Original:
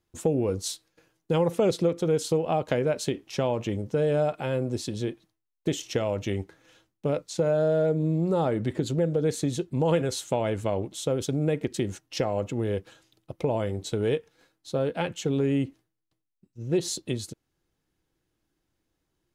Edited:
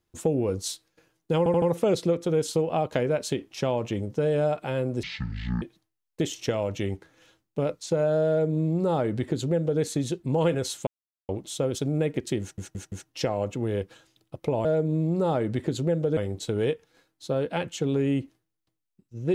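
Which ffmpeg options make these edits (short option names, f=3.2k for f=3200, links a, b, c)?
-filter_complex "[0:a]asplit=13[a][b][c][d][e][f][g][h][i][j][k][l][m];[a]atrim=end=1.462[n];[b]atrim=start=1.378:end=1.462[o];[c]atrim=start=1.378:end=1.462[p];[d]atrim=start=1.378:end=4.794[q];[e]atrim=start=4.79:end=5.09,asetpts=PTS-STARTPTS,asetrate=22491,aresample=44100,atrim=end_sample=25941,asetpts=PTS-STARTPTS[r];[f]atrim=start=5.086:end=10.34,asetpts=PTS-STARTPTS,afade=t=out:st=5.25:d=0.004:c=hsin[s];[g]atrim=start=10.34:end=10.76,asetpts=PTS-STARTPTS,volume=0[t];[h]atrim=start=10.76:end=12.052,asetpts=PTS-STARTPTS,afade=t=in:d=0.004:c=hsin[u];[i]atrim=start=11.878:end=12.052[v];[j]atrim=start=11.878:end=12.052[w];[k]atrim=start=11.878:end=13.612[x];[l]atrim=start=7.758:end=9.282[y];[m]atrim=start=13.608[z];[n][o]acrossfade=d=0.004:c1=hsin:c2=hsin[aa];[aa][p]acrossfade=d=0.004:c1=hsin:c2=hsin[ab];[ab][q]acrossfade=d=0.004:c1=hsin:c2=hsin[ac];[ac][r]acrossfade=d=0.004:c1=hsin:c2=hsin[ad];[s][t][u]concat=n=3:v=0:a=1[ae];[ad][ae]acrossfade=d=0.004:c1=hsin:c2=hsin[af];[af][v]acrossfade=d=0.004:c1=hsin:c2=hsin[ag];[ag][w]acrossfade=d=0.004:c1=hsin:c2=hsin[ah];[ah][x]acrossfade=d=0.004:c1=hsin:c2=hsin[ai];[ai][y]acrossfade=d=0.004:c1=hsin:c2=hsin[aj];[aj][z]acrossfade=d=0.004:c1=hsin:c2=hsin"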